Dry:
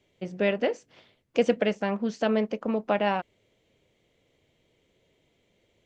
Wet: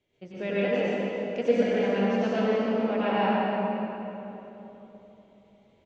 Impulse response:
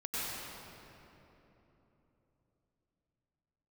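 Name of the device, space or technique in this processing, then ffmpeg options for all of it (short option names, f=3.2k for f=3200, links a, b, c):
cave: -filter_complex "[0:a]lowpass=6.6k,aecho=1:1:295:0.266[a];[1:a]atrim=start_sample=2205[b];[a][b]afir=irnorm=-1:irlink=0,asettb=1/sr,asplit=3[c][d][e];[c]atrim=end=1.464[f];[d]atrim=start=1.46:end=1.95,asetpts=PTS-STARTPTS,afade=t=in:d=0.004:c=qsin,afade=t=out:st=0.486:d=0.004:c=qsin,bandreject=f=2.7k:w=7.6[g];[e]atrim=start=1.946[h];[f][g]acrossfade=d=0.004:c1=hsin:c2=qsin[i];[i][h]acrossfade=d=0.004:c1=qsin:c2=hsin,volume=-4dB"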